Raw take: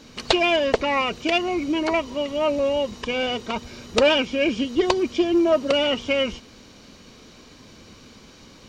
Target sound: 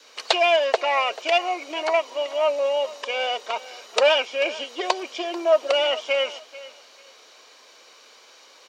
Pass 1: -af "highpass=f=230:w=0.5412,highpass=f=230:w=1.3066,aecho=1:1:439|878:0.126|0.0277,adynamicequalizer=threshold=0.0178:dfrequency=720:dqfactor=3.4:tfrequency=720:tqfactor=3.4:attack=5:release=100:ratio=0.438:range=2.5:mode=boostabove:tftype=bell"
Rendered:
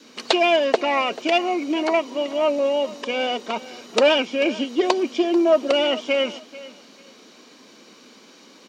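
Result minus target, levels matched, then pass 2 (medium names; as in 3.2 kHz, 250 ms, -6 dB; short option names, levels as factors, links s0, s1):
250 Hz band +13.5 dB
-af "highpass=f=510:w=0.5412,highpass=f=510:w=1.3066,aecho=1:1:439|878:0.126|0.0277,adynamicequalizer=threshold=0.0178:dfrequency=720:dqfactor=3.4:tfrequency=720:tqfactor=3.4:attack=5:release=100:ratio=0.438:range=2.5:mode=boostabove:tftype=bell"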